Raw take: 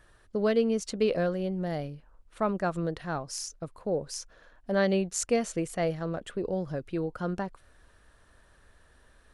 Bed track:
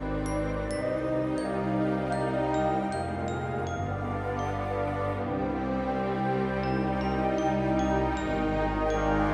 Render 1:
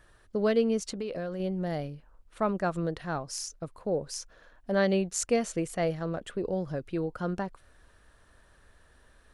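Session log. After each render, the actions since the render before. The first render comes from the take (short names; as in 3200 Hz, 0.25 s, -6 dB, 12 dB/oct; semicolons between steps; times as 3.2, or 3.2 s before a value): 0.78–1.4 compressor, threshold -31 dBFS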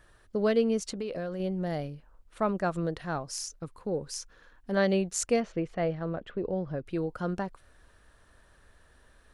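3.61–4.77 bell 640 Hz -11.5 dB 0.35 oct; 5.4–6.87 air absorption 250 m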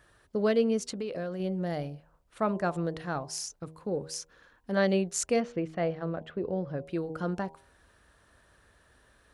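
HPF 56 Hz 12 dB/oct; de-hum 79.56 Hz, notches 13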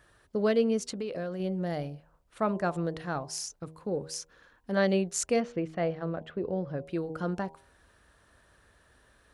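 nothing audible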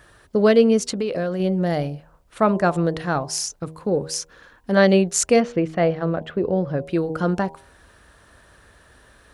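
gain +10.5 dB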